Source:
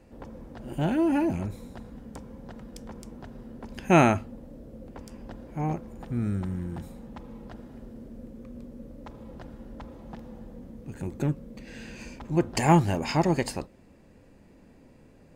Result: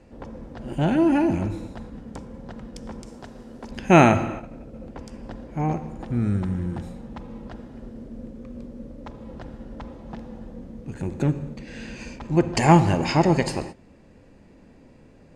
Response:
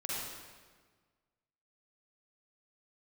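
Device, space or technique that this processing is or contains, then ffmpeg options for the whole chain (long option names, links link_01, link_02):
keyed gated reverb: -filter_complex "[0:a]asplit=3[link_01][link_02][link_03];[1:a]atrim=start_sample=2205[link_04];[link_02][link_04]afir=irnorm=-1:irlink=0[link_05];[link_03]apad=whole_len=677304[link_06];[link_05][link_06]sidechaingate=range=-33dB:threshold=-42dB:ratio=16:detection=peak,volume=-12.5dB[link_07];[link_01][link_07]amix=inputs=2:normalize=0,lowpass=7900,asettb=1/sr,asplit=3[link_08][link_09][link_10];[link_08]atrim=end=3.064[link_11];[link_09]atrim=start=3.06:end=3.71,asetpts=PTS-STARTPTS,afade=type=in:duration=0.004:curve=qsin,afade=type=out:start_time=0.646:duration=0.004:curve=qsin,bass=frequency=250:gain=-6,treble=frequency=4000:gain=8[link_12];[link_10]atrim=start=3.706[link_13];[link_11][link_12]acrossfade=duration=0.004:curve1=hsin:curve2=qsin[link_14];[link_14][link_13]acrossfade=duration=0.004:curve1=qsin:curve2=hsin,volume=3.5dB"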